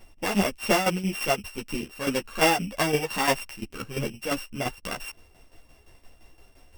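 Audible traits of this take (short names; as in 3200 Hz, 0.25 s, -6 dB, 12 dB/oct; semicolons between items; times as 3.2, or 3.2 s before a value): a buzz of ramps at a fixed pitch in blocks of 16 samples; tremolo saw down 5.8 Hz, depth 70%; a shimmering, thickened sound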